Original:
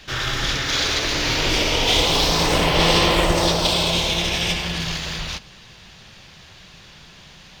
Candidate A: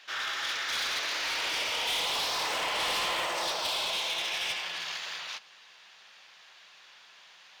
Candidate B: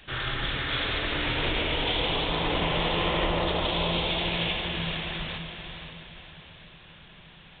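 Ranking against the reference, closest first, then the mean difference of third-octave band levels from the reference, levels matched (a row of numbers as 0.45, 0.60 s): A, B; 6.5, 9.5 dB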